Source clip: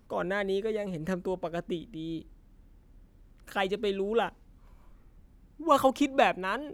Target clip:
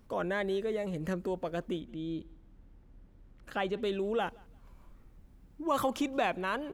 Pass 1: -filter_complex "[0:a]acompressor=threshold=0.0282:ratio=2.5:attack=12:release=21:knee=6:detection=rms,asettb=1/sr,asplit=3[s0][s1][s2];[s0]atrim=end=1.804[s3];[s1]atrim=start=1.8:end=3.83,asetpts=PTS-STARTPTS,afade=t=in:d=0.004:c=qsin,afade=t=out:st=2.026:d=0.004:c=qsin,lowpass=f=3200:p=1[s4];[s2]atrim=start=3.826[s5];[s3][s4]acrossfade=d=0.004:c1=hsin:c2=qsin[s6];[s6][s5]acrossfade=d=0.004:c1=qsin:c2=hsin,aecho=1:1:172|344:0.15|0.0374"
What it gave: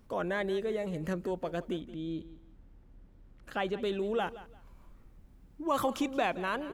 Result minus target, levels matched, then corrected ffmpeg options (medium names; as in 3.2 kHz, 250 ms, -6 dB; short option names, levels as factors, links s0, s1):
echo-to-direct +10 dB
-filter_complex "[0:a]acompressor=threshold=0.0282:ratio=2.5:attack=12:release=21:knee=6:detection=rms,asettb=1/sr,asplit=3[s0][s1][s2];[s0]atrim=end=1.804[s3];[s1]atrim=start=1.8:end=3.83,asetpts=PTS-STARTPTS,afade=t=in:d=0.004:c=qsin,afade=t=out:st=2.026:d=0.004:c=qsin,lowpass=f=3200:p=1[s4];[s2]atrim=start=3.826[s5];[s3][s4]acrossfade=d=0.004:c1=hsin:c2=qsin[s6];[s6][s5]acrossfade=d=0.004:c1=qsin:c2=hsin,aecho=1:1:172|344:0.0473|0.0118"